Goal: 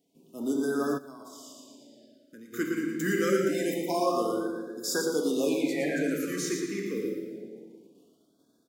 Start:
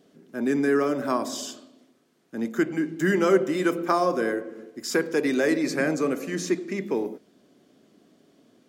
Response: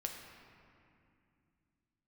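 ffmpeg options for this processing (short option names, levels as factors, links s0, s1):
-filter_complex "[0:a]asettb=1/sr,asplit=3[s0][s1][s2];[s0]atrim=end=5.494[s3];[s1]atrim=start=5.49:end=6.04,asetpts=PTS-STARTPTS,afade=t=in:d=0.004:c=qsin,afade=t=out:st=0.546:d=0.004:c=qsin,highshelf=f=4200:t=q:w=3:g=-7[s4];[s2]atrim=start=6.036[s5];[s3][s4]acrossfade=d=0.004:c1=hsin:c2=qsin[s6];[s6][s5]acrossfade=d=0.004:c1=qsin:c2=hsin,agate=range=0.355:threshold=0.00141:ratio=16:detection=peak,aemphasis=mode=production:type=50kf,aecho=1:1:115|230|345|460:0.501|0.165|0.0546|0.018[s7];[1:a]atrim=start_sample=2205,asetrate=79380,aresample=44100[s8];[s7][s8]afir=irnorm=-1:irlink=0,asplit=3[s9][s10][s11];[s9]afade=t=out:st=0.97:d=0.02[s12];[s10]acompressor=threshold=0.00316:ratio=3,afade=t=in:st=0.97:d=0.02,afade=t=out:st=2.52:d=0.02[s13];[s11]afade=t=in:st=2.52:d=0.02[s14];[s12][s13][s14]amix=inputs=3:normalize=0,afftfilt=real='re*(1-between(b*sr/1024,720*pow(2400/720,0.5+0.5*sin(2*PI*0.26*pts/sr))/1.41,720*pow(2400/720,0.5+0.5*sin(2*PI*0.26*pts/sr))*1.41))':imag='im*(1-between(b*sr/1024,720*pow(2400/720,0.5+0.5*sin(2*PI*0.26*pts/sr))/1.41,720*pow(2400/720,0.5+0.5*sin(2*PI*0.26*pts/sr))*1.41))':win_size=1024:overlap=0.75"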